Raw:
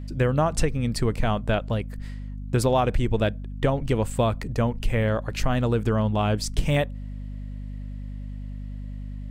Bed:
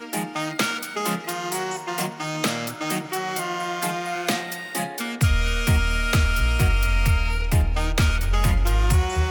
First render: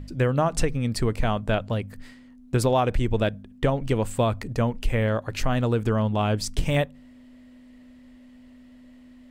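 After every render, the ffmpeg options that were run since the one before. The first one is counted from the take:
-af "bandreject=f=50:t=h:w=4,bandreject=f=100:t=h:w=4,bandreject=f=150:t=h:w=4,bandreject=f=200:t=h:w=4"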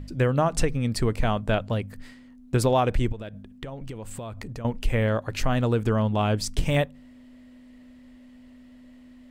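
-filter_complex "[0:a]asettb=1/sr,asplit=3[s0][s1][s2];[s0]atrim=end=3.124[s3];[s1]atrim=start=3.12:end=4.65,asetpts=PTS-STARTPTS,afade=t=in:d=0.004:c=qsin,afade=t=out:st=1.526:d=0.004:c=qsin,acompressor=threshold=0.0251:ratio=10:attack=3.2:release=140:knee=1:detection=peak[s4];[s2]atrim=start=4.646[s5];[s3][s4]acrossfade=d=0.004:c1=hsin:c2=qsin[s6];[s6][s5]acrossfade=d=0.004:c1=qsin:c2=hsin"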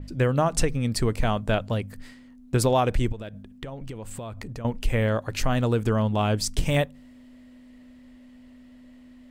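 -af "adynamicequalizer=threshold=0.00794:dfrequency=4300:dqfactor=0.7:tfrequency=4300:tqfactor=0.7:attack=5:release=100:ratio=0.375:range=2:mode=boostabove:tftype=highshelf"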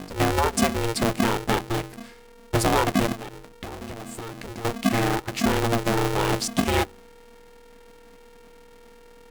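-af "aeval=exprs='val(0)*sgn(sin(2*PI*230*n/s))':c=same"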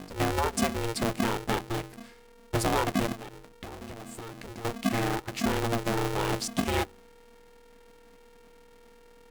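-af "volume=0.531"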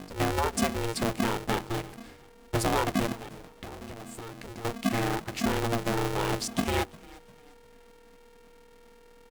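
-filter_complex "[0:a]asplit=4[s0][s1][s2][s3];[s1]adelay=351,afreqshift=-37,volume=0.0794[s4];[s2]adelay=702,afreqshift=-74,volume=0.0285[s5];[s3]adelay=1053,afreqshift=-111,volume=0.0104[s6];[s0][s4][s5][s6]amix=inputs=4:normalize=0"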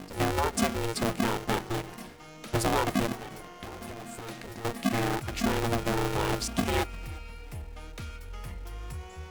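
-filter_complex "[1:a]volume=0.0944[s0];[0:a][s0]amix=inputs=2:normalize=0"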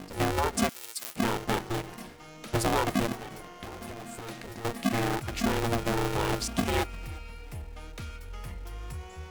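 -filter_complex "[0:a]asettb=1/sr,asplit=3[s0][s1][s2];[s0]atrim=end=0.694[s3];[s1]atrim=start=0.69:end=1.16,asetpts=PTS-STARTPTS,afade=t=in:d=0.004:c=qsin,afade=t=out:st=0.466:d=0.004:c=qsin,aderivative[s4];[s2]atrim=start=1.156[s5];[s3][s4]acrossfade=d=0.004:c1=hsin:c2=qsin[s6];[s6][s5]acrossfade=d=0.004:c1=qsin:c2=hsin"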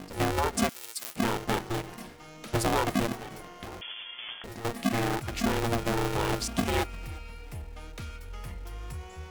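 -filter_complex "[0:a]asettb=1/sr,asplit=3[s0][s1][s2];[s0]atrim=end=3.814[s3];[s1]atrim=start=3.81:end=4.44,asetpts=PTS-STARTPTS,afade=t=in:d=0.004:c=qsin,afade=t=out:st=0.626:d=0.004:c=qsin,lowpass=f=3000:t=q:w=0.5098,lowpass=f=3000:t=q:w=0.6013,lowpass=f=3000:t=q:w=0.9,lowpass=f=3000:t=q:w=2.563,afreqshift=-3500[s4];[s2]atrim=start=4.436[s5];[s3][s4]acrossfade=d=0.004:c1=hsin:c2=qsin[s6];[s6][s5]acrossfade=d=0.004:c1=qsin:c2=hsin"

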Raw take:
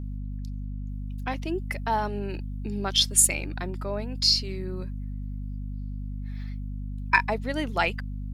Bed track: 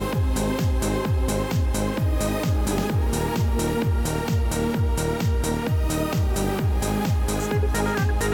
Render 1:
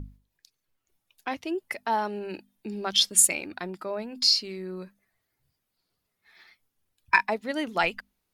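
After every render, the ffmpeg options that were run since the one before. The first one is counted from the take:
-af "bandreject=f=50:t=h:w=6,bandreject=f=100:t=h:w=6,bandreject=f=150:t=h:w=6,bandreject=f=200:t=h:w=6,bandreject=f=250:t=h:w=6"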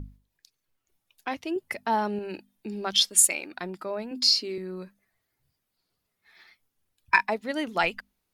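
-filter_complex "[0:a]asettb=1/sr,asplit=3[s0][s1][s2];[s0]atrim=end=1.564[s3];[s1]atrim=start=1.56:end=2.19,asetpts=PTS-STARTPTS,afade=t=in:d=0.004:c=qsin,afade=t=out:st=0.626:d=0.004:c=qsin,equalizer=f=110:t=o:w=2.5:g=8.5[s4];[s2]atrim=start=2.186[s5];[s3][s4]acrossfade=d=0.004:c1=hsin:c2=qsin[s6];[s6][s5]acrossfade=d=0.004:c1=qsin:c2=hsin,asettb=1/sr,asplit=3[s7][s8][s9];[s7]atrim=end=3.014[s10];[s8]atrim=start=3.01:end=3.58,asetpts=PTS-STARTPTS,afade=t=in:d=0.004:c=qsin,afade=t=out:st=0.566:d=0.004:c=qsin,equalizer=f=100:w=0.68:g=-14[s11];[s9]atrim=start=3.576[s12];[s10][s11]acrossfade=d=0.004:c1=hsin:c2=qsin[s13];[s13][s12]acrossfade=d=0.004:c1=qsin:c2=hsin,asettb=1/sr,asplit=3[s14][s15][s16];[s14]atrim=end=4.114[s17];[s15]atrim=start=4.11:end=4.58,asetpts=PTS-STARTPTS,afade=t=in:d=0.004:c=qsin,afade=t=out:st=0.466:d=0.004:c=qsin,highpass=f=290:t=q:w=2.6[s18];[s16]atrim=start=4.576[s19];[s17][s18]acrossfade=d=0.004:c1=hsin:c2=qsin[s20];[s20][s19]acrossfade=d=0.004:c1=qsin:c2=hsin"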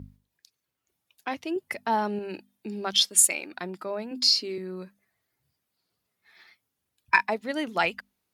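-af "highpass=76"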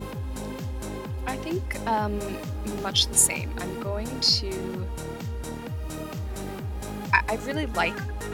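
-filter_complex "[1:a]volume=0.299[s0];[0:a][s0]amix=inputs=2:normalize=0"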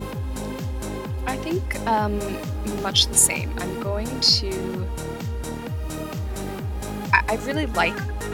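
-af "volume=1.58,alimiter=limit=0.794:level=0:latency=1"

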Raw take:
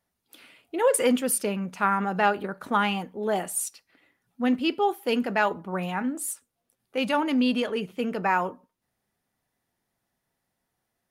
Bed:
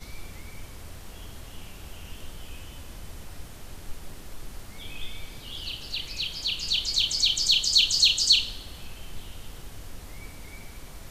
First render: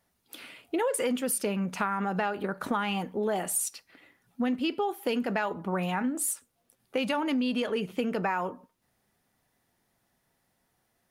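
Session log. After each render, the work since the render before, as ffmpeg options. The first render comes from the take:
-filter_complex "[0:a]asplit=2[s0][s1];[s1]alimiter=limit=0.112:level=0:latency=1:release=23,volume=0.944[s2];[s0][s2]amix=inputs=2:normalize=0,acompressor=threshold=0.0501:ratio=6"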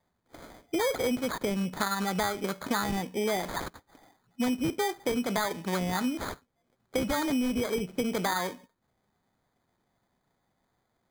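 -af "adynamicsmooth=sensitivity=7:basefreq=5200,acrusher=samples=16:mix=1:aa=0.000001"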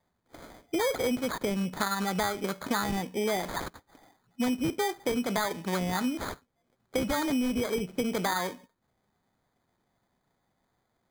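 -af anull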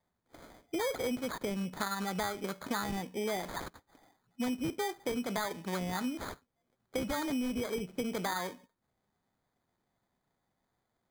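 -af "volume=0.531"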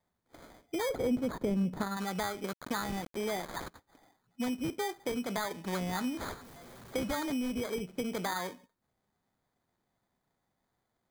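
-filter_complex "[0:a]asettb=1/sr,asplit=3[s0][s1][s2];[s0]atrim=end=0.894[s3];[s1]atrim=start=0.89:end=1.97,asetpts=PTS-STARTPTS,afade=t=in:d=0.004:c=qsin,afade=t=out:st=1.076:d=0.004:c=qsin,tiltshelf=f=780:g=7[s4];[s2]atrim=start=1.966[s5];[s3][s4]acrossfade=d=0.004:c1=hsin:c2=qsin[s6];[s6][s5]acrossfade=d=0.004:c1=qsin:c2=hsin,asettb=1/sr,asplit=3[s7][s8][s9];[s7]atrim=end=2.534[s10];[s8]atrim=start=2.53:end=3.56,asetpts=PTS-STARTPTS,afade=t=in:d=0.004:c=qsin,afade=t=out:st=1.026:d=0.004:c=qsin,aeval=exprs='val(0)*gte(abs(val(0)),0.00891)':c=same[s11];[s9]atrim=start=3.556[s12];[s10][s11]acrossfade=d=0.004:c1=hsin:c2=qsin[s13];[s13][s12]acrossfade=d=0.004:c1=qsin:c2=hsin,asettb=1/sr,asplit=3[s14][s15][s16];[s14]atrim=end=5.644[s17];[s15]atrim=start=5.64:end=7.15,asetpts=PTS-STARTPTS,afade=t=in:d=0.004:c=qsin,afade=t=out:st=1.506:d=0.004:c=qsin,aeval=exprs='val(0)+0.5*0.00562*sgn(val(0))':c=same[s18];[s16]atrim=start=7.146[s19];[s17][s18]acrossfade=d=0.004:c1=hsin:c2=qsin[s20];[s20][s19]acrossfade=d=0.004:c1=qsin:c2=hsin"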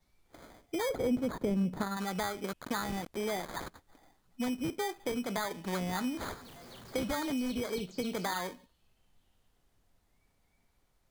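-filter_complex "[1:a]volume=0.0266[s0];[0:a][s0]amix=inputs=2:normalize=0"

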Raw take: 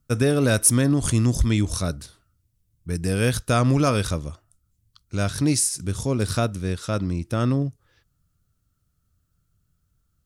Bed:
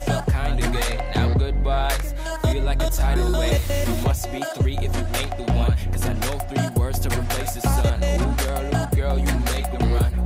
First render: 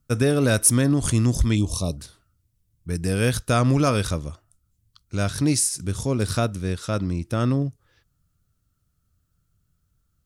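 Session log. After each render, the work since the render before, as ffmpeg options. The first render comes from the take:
-filter_complex "[0:a]asplit=3[s0][s1][s2];[s0]afade=t=out:st=1.55:d=0.02[s3];[s1]asuperstop=centerf=1700:order=12:qfactor=1.3,afade=t=in:st=1.55:d=0.02,afade=t=out:st=1.97:d=0.02[s4];[s2]afade=t=in:st=1.97:d=0.02[s5];[s3][s4][s5]amix=inputs=3:normalize=0"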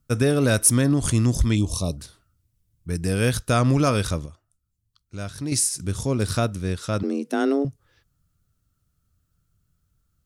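-filter_complex "[0:a]asettb=1/sr,asplit=3[s0][s1][s2];[s0]atrim=end=7.034[s3];[s1]atrim=start=7.03:end=7.65,asetpts=PTS-STARTPTS,afade=t=in:d=0.004:c=qsin,afade=t=out:st=0.616:d=0.004:c=qsin,afreqshift=140[s4];[s2]atrim=start=7.646[s5];[s3][s4]acrossfade=d=0.004:c1=hsin:c2=qsin[s6];[s6][s5]acrossfade=d=0.004:c1=qsin:c2=hsin,asplit=3[s7][s8][s9];[s7]atrim=end=4.262[s10];[s8]atrim=start=4.258:end=5.522,asetpts=PTS-STARTPTS,volume=0.376[s11];[s9]atrim=start=5.518[s12];[s10][s11]acrossfade=d=0.004:c1=hsin:c2=hsin[s13];[s13][s12]acrossfade=d=0.004:c1=hsin:c2=hsin"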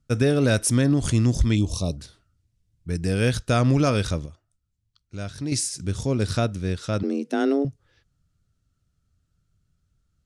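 -af "lowpass=7100,equalizer=f=1100:t=o:w=0.61:g=-4.5"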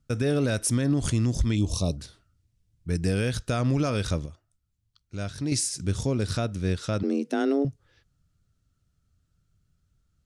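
-af "alimiter=limit=0.178:level=0:latency=1:release=173"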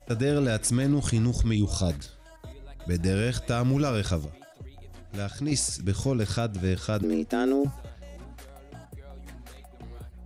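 -filter_complex "[1:a]volume=0.0668[s0];[0:a][s0]amix=inputs=2:normalize=0"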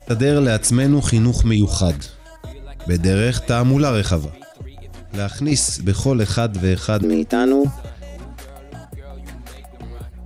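-af "volume=2.82"

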